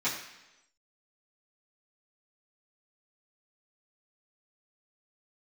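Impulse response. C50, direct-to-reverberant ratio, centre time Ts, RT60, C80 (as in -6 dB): 5.5 dB, -12.5 dB, 36 ms, 1.0 s, 8.0 dB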